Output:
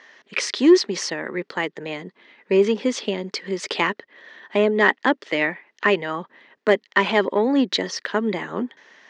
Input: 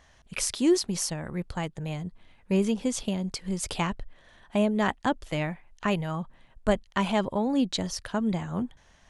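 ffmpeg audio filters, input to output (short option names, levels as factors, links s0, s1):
-af "aeval=exprs='0.355*(cos(1*acos(clip(val(0)/0.355,-1,1)))-cos(1*PI/2))+0.0316*(cos(5*acos(clip(val(0)/0.355,-1,1)))-cos(5*PI/2))':c=same,highpass=f=260:w=0.5412,highpass=f=260:w=1.3066,equalizer=f=410:t=q:w=4:g=6,equalizer=f=720:t=q:w=4:g=-6,equalizer=f=1900:t=q:w=4:g=9,lowpass=f=5400:w=0.5412,lowpass=f=5400:w=1.3066,volume=1.88"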